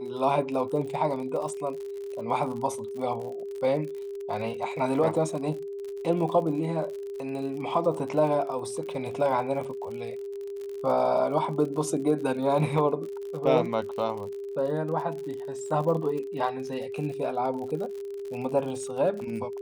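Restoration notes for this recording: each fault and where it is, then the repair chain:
crackle 53/s -35 dBFS
tone 400 Hz -33 dBFS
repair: de-click; notch 400 Hz, Q 30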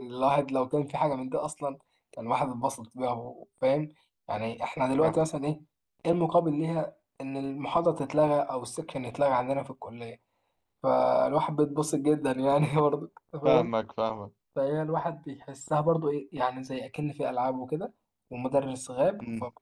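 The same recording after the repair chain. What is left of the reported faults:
none

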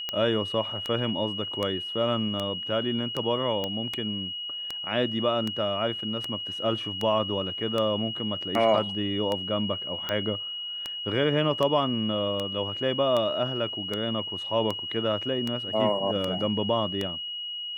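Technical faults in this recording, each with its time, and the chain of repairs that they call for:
tick 78 rpm -15 dBFS
tone 2900 Hz -32 dBFS
3.64 pop -16 dBFS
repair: de-click; notch 2900 Hz, Q 30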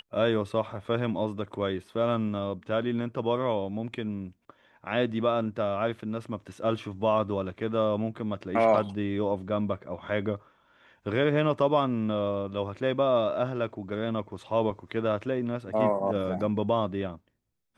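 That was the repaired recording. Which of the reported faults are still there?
none

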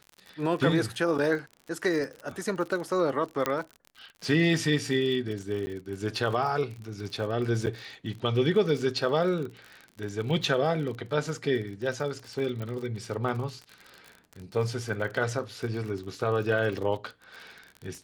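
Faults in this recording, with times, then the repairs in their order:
crackle 47/s -35 dBFS
3.46 pop -11 dBFS
5.66–5.67 gap 10 ms
7.66–7.67 gap 8.7 ms
12.62 pop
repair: de-click; interpolate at 5.66, 10 ms; interpolate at 7.66, 8.7 ms

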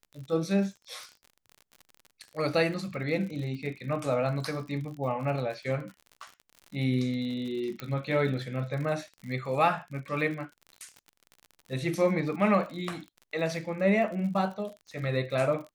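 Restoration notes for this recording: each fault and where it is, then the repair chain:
crackle 59/s -38 dBFS
7.8 pop -21 dBFS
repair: de-click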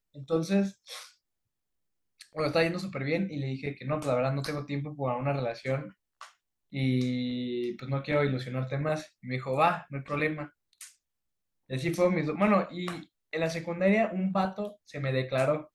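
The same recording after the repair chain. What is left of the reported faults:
7.8 pop

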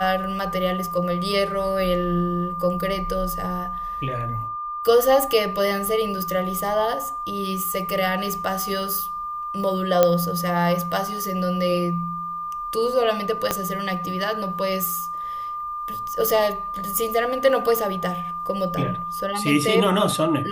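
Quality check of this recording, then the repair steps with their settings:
tone 1200 Hz -27 dBFS
10.03 pop -3 dBFS
13.51 pop -6 dBFS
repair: de-click; notch 1200 Hz, Q 30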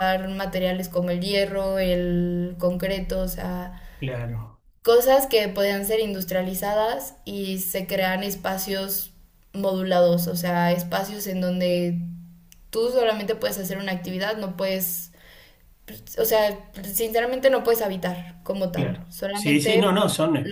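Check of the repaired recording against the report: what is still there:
13.51 pop

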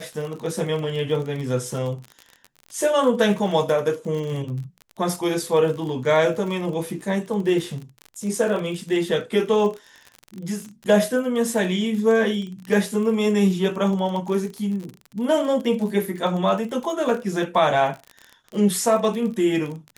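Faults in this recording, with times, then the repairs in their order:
crackle 37/s -29 dBFS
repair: de-click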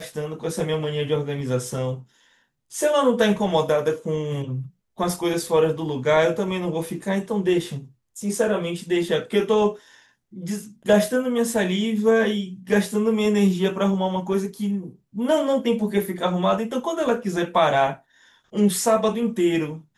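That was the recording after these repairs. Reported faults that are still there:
none

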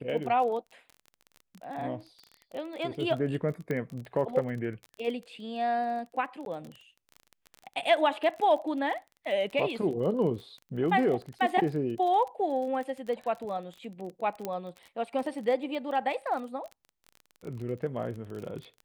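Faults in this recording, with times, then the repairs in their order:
crackle 28/s -36 dBFS
3.71 pop -21 dBFS
6.45–6.46 gap 12 ms
14.45 pop -19 dBFS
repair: de-click; interpolate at 6.45, 12 ms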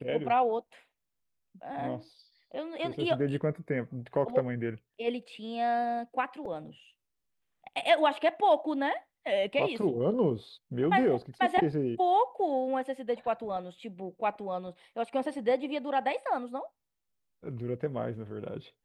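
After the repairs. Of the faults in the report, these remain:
none

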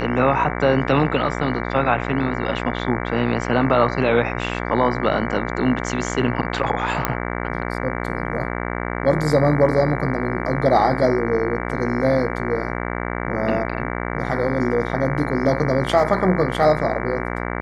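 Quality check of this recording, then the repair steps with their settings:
buzz 60 Hz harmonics 38 -26 dBFS
7.05 pop -4 dBFS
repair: de-click; de-hum 60 Hz, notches 38

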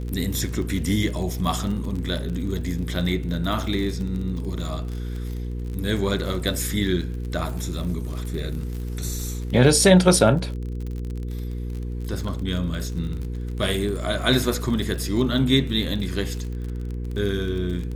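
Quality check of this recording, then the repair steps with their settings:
crackle 38/s -29 dBFS
hum 60 Hz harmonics 8 -29 dBFS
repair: de-click; de-hum 60 Hz, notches 8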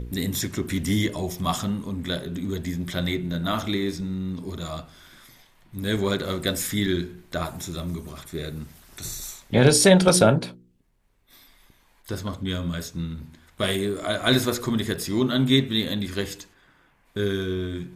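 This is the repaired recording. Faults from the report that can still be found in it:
none

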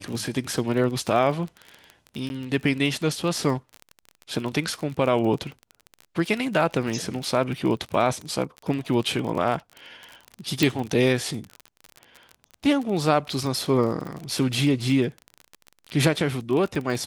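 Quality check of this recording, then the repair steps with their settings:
crackle 30/s -29 dBFS
2.29–2.3 gap 11 ms
10.63 pop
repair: de-click; interpolate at 2.29, 11 ms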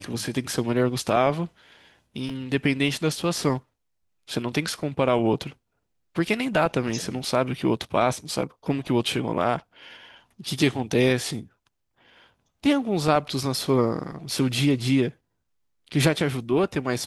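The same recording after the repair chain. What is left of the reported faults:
10.63 pop

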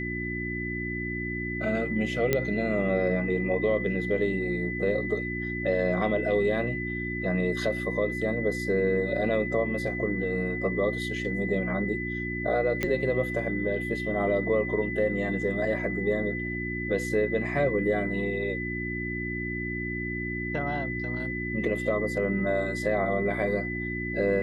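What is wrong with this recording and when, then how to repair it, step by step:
hum 60 Hz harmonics 6 -34 dBFS
tone 2000 Hz -33 dBFS
2.33 pop -10 dBFS
12.83 pop -13 dBFS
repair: de-click; de-hum 60 Hz, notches 6; notch 2000 Hz, Q 30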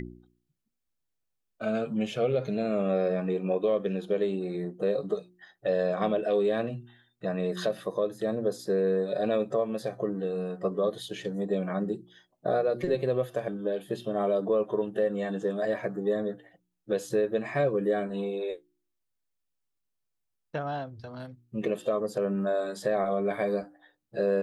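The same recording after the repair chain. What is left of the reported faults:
none

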